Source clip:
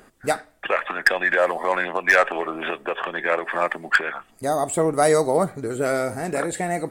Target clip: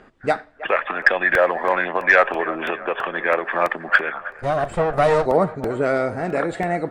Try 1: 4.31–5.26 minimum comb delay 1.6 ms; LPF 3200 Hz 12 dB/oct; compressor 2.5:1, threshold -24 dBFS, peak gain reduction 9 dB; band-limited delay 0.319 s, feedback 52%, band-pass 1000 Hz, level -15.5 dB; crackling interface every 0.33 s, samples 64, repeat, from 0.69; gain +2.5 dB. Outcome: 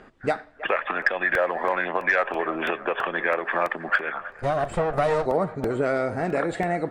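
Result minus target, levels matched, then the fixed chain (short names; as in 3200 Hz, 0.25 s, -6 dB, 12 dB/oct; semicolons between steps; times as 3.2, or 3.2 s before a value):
compressor: peak gain reduction +9 dB
4.31–5.26 minimum comb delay 1.6 ms; LPF 3200 Hz 12 dB/oct; band-limited delay 0.319 s, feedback 52%, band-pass 1000 Hz, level -15.5 dB; crackling interface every 0.33 s, samples 64, repeat, from 0.69; gain +2.5 dB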